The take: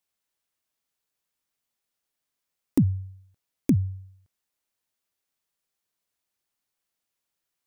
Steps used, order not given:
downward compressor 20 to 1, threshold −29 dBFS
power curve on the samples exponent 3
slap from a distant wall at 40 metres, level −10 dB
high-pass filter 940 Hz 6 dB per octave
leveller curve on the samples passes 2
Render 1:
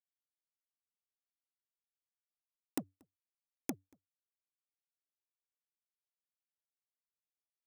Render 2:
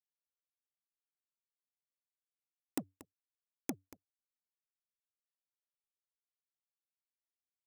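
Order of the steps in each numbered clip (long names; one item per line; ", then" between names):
high-pass filter, then downward compressor, then leveller curve on the samples, then slap from a distant wall, then power curve on the samples
high-pass filter, then downward compressor, then slap from a distant wall, then leveller curve on the samples, then power curve on the samples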